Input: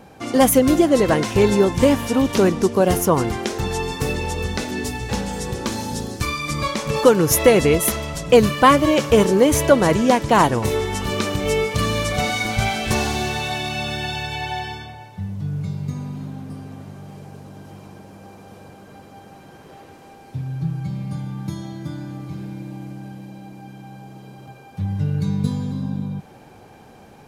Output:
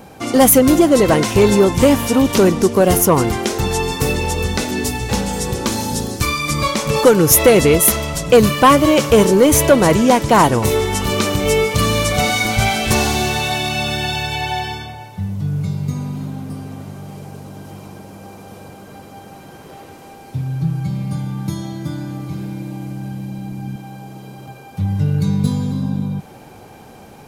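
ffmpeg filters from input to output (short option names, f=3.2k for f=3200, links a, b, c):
-filter_complex "[0:a]asettb=1/sr,asplit=3[a][b][c];[a]atrim=end=22.784[d];[b]atrim=start=22.78:end=23.76,asetpts=PTS-STARTPTS,afade=t=in:d=0.004:c=qsin,afade=t=out:st=0.976:d=0.004:c=qsin,asubboost=boost=10.5:cutoff=240[e];[c]atrim=start=23.756[f];[d][e]acrossfade=d=0.004:c1=hsin:c2=qsin[g];[g][f]acrossfade=d=0.004:c1=qsin:c2=hsin,highshelf=f=9.2k:g=8,bandreject=f=1.7k:w=17,acontrast=57,volume=-1dB"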